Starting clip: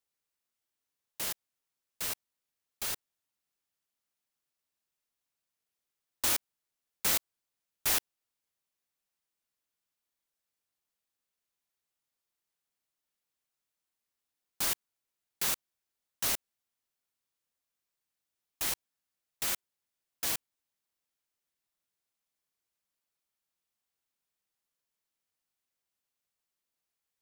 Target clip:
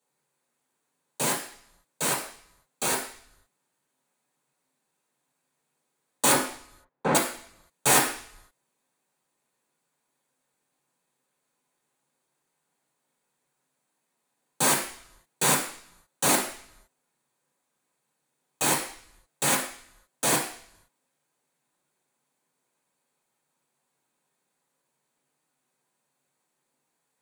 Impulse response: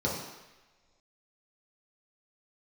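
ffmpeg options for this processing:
-filter_complex "[0:a]asettb=1/sr,asplit=3[s0][s1][s2];[s0]atrim=end=6.324[s3];[s1]atrim=start=6.32:end=7.15,asetpts=PTS-STARTPTS,afade=t=in:d=0.004:c=qsin,afade=t=out:st=0.826:d=0.004:c=qsin,lowpass=1400[s4];[s2]atrim=start=7.146[s5];[s3][s4]acrossfade=d=0.004:c1=hsin:c2=qsin[s6];[s6][s5]acrossfade=d=0.004:c1=qsin:c2=hsin[s7];[1:a]atrim=start_sample=2205,asetrate=79380,aresample=44100[s8];[s7][s8]afir=irnorm=-1:irlink=0,volume=2.37"

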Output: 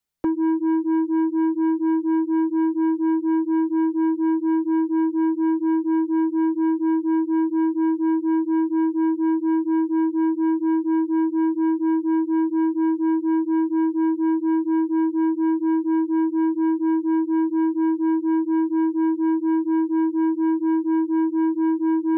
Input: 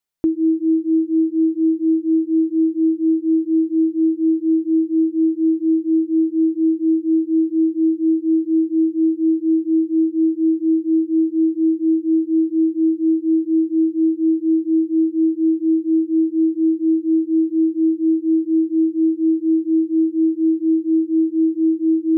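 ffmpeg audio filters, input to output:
-filter_complex "[0:a]acrossover=split=200|230[s0][s1][s2];[s0]acontrast=83[s3];[s3][s1][s2]amix=inputs=3:normalize=0,asoftclip=type=tanh:threshold=0.133"

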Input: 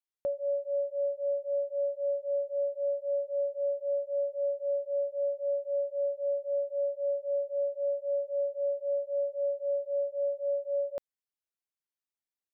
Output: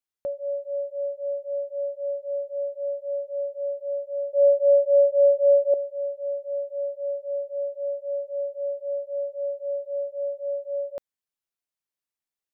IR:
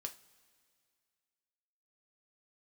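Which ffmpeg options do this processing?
-filter_complex "[0:a]asettb=1/sr,asplit=3[s0][s1][s2];[s0]atrim=end=4.334[s3];[s1]atrim=start=4.33:end=5.74,asetpts=PTS-STARTPTS,afade=t=in:d=0.004:c=qsin,afade=t=out:st=1.406:d=0.004:c=qsin,equalizer=f=450:w=0.69:g=13.5[s4];[s2]atrim=start=5.736[s5];[s3][s4]acrossfade=d=0.004:c1=hsin:c2=qsin[s6];[s6][s5]acrossfade=d=0.004:c1=qsin:c2=hsin,volume=1.19"

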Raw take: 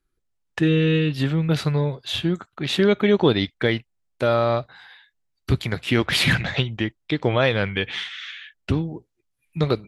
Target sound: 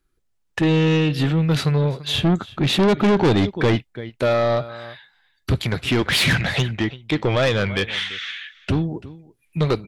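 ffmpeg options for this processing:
-filter_complex "[0:a]asettb=1/sr,asplit=3[s0][s1][s2];[s0]atrim=end=2.184[s3];[s1]atrim=start=2.18:end=3.76,asetpts=PTS-STARTPTS,afade=t=in:d=0.004:c=qsin,afade=t=out:st=1.576:d=0.004:c=qsin,lowshelf=f=470:g=8.5[s4];[s2]atrim=start=3.756[s5];[s3][s4]acrossfade=d=0.004:c1=hsin:c2=qsin[s6];[s6][s5]acrossfade=d=0.004:c1=qsin:c2=hsin,asplit=2[s7][s8];[s8]aecho=0:1:338:0.0891[s9];[s7][s9]amix=inputs=2:normalize=0,asoftclip=type=tanh:threshold=0.126,volume=1.78"

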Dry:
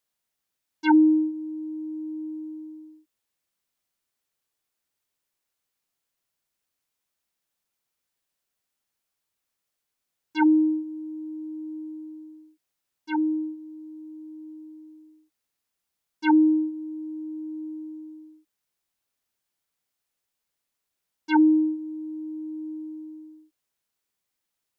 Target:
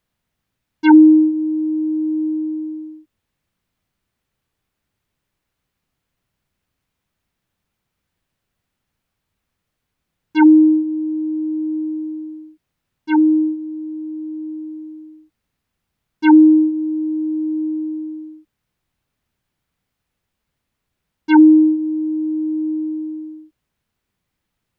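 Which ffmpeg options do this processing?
-filter_complex "[0:a]bass=f=250:g=14,treble=f=4000:g=-10,asplit=2[s0][s1];[s1]acompressor=threshold=0.0794:ratio=6,volume=1.12[s2];[s0][s2]amix=inputs=2:normalize=0,volume=1.33"

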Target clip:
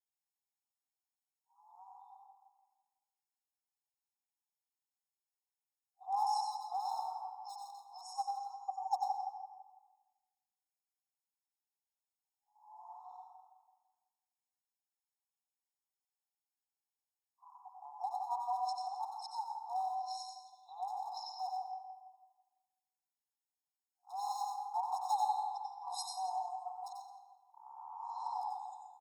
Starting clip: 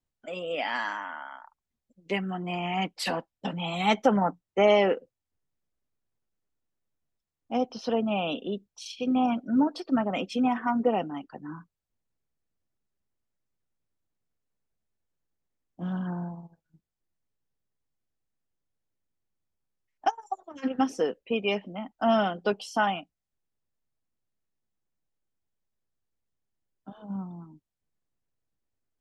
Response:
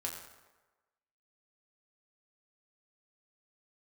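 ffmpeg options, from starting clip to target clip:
-filter_complex "[0:a]areverse,asplit=2[s0][s1];[s1]adelay=167,lowpass=f=2600:p=1,volume=0.447,asplit=2[s2][s3];[s3]adelay=167,lowpass=f=2600:p=1,volume=0.43,asplit=2[s4][s5];[s5]adelay=167,lowpass=f=2600:p=1,volume=0.43,asplit=2[s6][s7];[s7]adelay=167,lowpass=f=2600:p=1,volume=0.43,asplit=2[s8][s9];[s9]adelay=167,lowpass=f=2600:p=1,volume=0.43[s10];[s0][s2][s4][s6][s8][s10]amix=inputs=6:normalize=0,asoftclip=type=hard:threshold=0.119,asuperstop=centerf=2100:order=12:qfactor=0.63,highshelf=f=3700:g=6.5,bandreject=f=153.9:t=h:w=4,bandreject=f=307.8:t=h:w=4,bandreject=f=461.7:t=h:w=4,bandreject=f=615.6:t=h:w=4,bandreject=f=769.5:t=h:w=4,bandreject=f=923.4:t=h:w=4,bandreject=f=1077.3:t=h:w=4,bandreject=f=1231.2:t=h:w=4,bandreject=f=1385.1:t=h:w=4,bandreject=f=1539:t=h:w=4,bandreject=f=1692.9:t=h:w=4,bandreject=f=1846.8:t=h:w=4,bandreject=f=2000.7:t=h:w=4,bandreject=f=2154.6:t=h:w=4,bandreject=f=2308.5:t=h:w=4,asplit=2[s11][s12];[1:a]atrim=start_sample=2205,adelay=91[s13];[s12][s13]afir=irnorm=-1:irlink=0,volume=0.794[s14];[s11][s14]amix=inputs=2:normalize=0,afftfilt=real='re*eq(mod(floor(b*sr/1024/710),2),1)':imag='im*eq(mod(floor(b*sr/1024/710),2),1)':win_size=1024:overlap=0.75,volume=0.473"

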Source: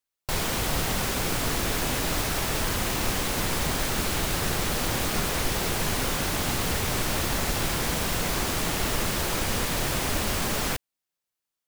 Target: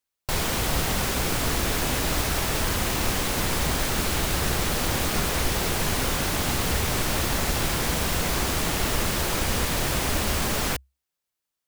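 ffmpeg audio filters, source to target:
-af "equalizer=f=66:t=o:w=0.26:g=6.5,volume=1.19"

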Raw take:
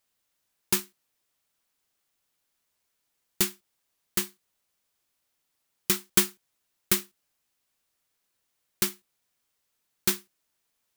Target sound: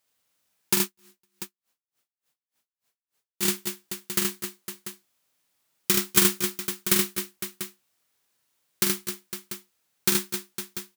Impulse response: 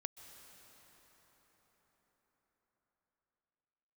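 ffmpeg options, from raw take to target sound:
-filter_complex "[0:a]highpass=86,aecho=1:1:45|75|249|263|508|692:0.501|0.668|0.178|0.355|0.266|0.251,asettb=1/sr,asplit=3[s0][s1][s2];[s0]atrim=end=0.824[s3];[s1]atrim=start=0.82:end=3.43,asetpts=PTS-STARTPTS,afade=t=in:d=0.004:c=qsin,afade=t=out:st=2.606:d=0.004:c=qsin,aeval=exprs='val(0)*pow(10,-38*(0.5-0.5*cos(2*PI*3.4*n/s))/20)':c=same[s4];[s2]atrim=start=3.426[s5];[s3][s4]acrossfade=d=0.004:c1=hsin:c2=qsin[s6];[s6][s5]acrossfade=d=0.004:c1=qsin:c2=hsin,volume=1.19"

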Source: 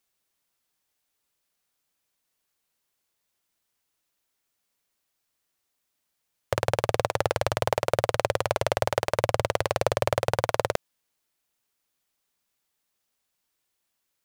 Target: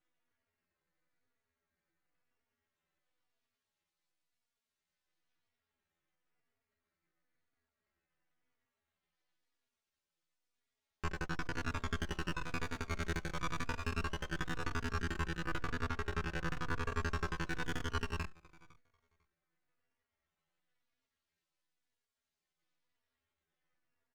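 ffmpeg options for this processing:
-filter_complex "[0:a]asoftclip=type=tanh:threshold=0.355,bandreject=f=1300:w=11,alimiter=limit=0.224:level=0:latency=1:release=10,asplit=2[s0][s1];[s1]adelay=296,lowpass=f=860:p=1,volume=0.0891,asplit=2[s2][s3];[s3]adelay=296,lowpass=f=860:p=1,volume=0.18[s4];[s0][s2][s4]amix=inputs=3:normalize=0,acrusher=samples=11:mix=1:aa=0.000001:lfo=1:lforange=17.6:lforate=0.29,asplit=2[s5][s6];[s6]adelay=12,volume=0.794[s7];[s5][s7]amix=inputs=2:normalize=0,atempo=0.59,highpass=f=150:w=0.5412,highpass=f=150:w=1.3066,equalizer=f=170:t=q:w=4:g=-7,equalizer=f=300:t=q:w=4:g=-10,equalizer=f=970:t=q:w=4:g=8,equalizer=f=1500:t=q:w=4:g=-5,equalizer=f=4300:t=q:w=4:g=-8,lowpass=f=5900:w=0.5412,lowpass=f=5900:w=1.3066,aeval=exprs='abs(val(0))':c=same,asplit=2[s8][s9];[s9]adelay=3.5,afreqshift=-0.97[s10];[s8][s10]amix=inputs=2:normalize=1,volume=0.531"

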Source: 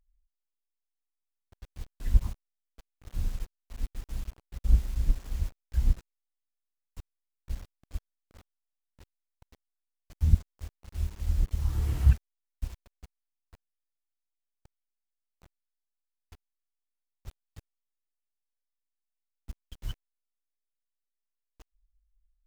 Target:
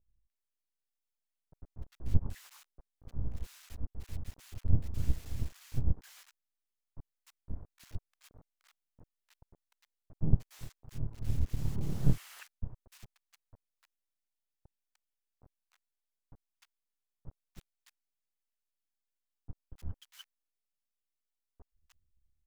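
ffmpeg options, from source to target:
-filter_complex "[0:a]aeval=exprs='abs(val(0))':c=same,acrossover=split=1100[s0][s1];[s1]adelay=300[s2];[s0][s2]amix=inputs=2:normalize=0,volume=0.75"

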